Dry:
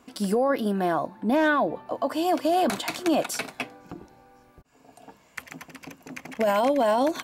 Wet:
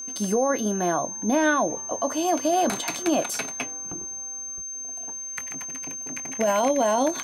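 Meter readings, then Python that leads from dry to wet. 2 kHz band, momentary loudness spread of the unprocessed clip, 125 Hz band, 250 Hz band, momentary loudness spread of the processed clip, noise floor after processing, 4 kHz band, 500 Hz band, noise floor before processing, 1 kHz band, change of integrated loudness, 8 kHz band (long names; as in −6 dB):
+0.5 dB, 20 LU, −0.5 dB, 0.0 dB, 10 LU, −35 dBFS, 0.0 dB, 0.0 dB, −59 dBFS, +0.5 dB, −0.5 dB, +15.5 dB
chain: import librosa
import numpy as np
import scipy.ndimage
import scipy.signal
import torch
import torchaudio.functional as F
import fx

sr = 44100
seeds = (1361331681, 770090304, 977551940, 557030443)

y = x + 10.0 ** (-33.0 / 20.0) * np.sin(2.0 * np.pi * 6300.0 * np.arange(len(x)) / sr)
y = fx.doubler(y, sr, ms=23.0, db=-14)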